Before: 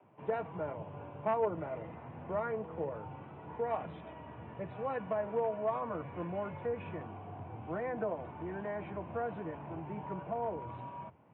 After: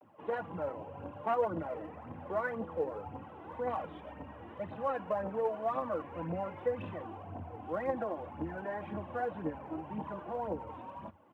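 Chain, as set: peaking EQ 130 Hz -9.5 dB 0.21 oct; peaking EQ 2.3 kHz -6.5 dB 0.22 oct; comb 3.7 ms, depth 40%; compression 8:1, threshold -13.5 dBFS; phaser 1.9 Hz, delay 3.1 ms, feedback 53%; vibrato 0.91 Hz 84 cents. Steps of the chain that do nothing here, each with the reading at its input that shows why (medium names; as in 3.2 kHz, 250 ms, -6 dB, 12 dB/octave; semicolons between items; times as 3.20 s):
compression, threshold -13.5 dBFS: peak at its input -20.5 dBFS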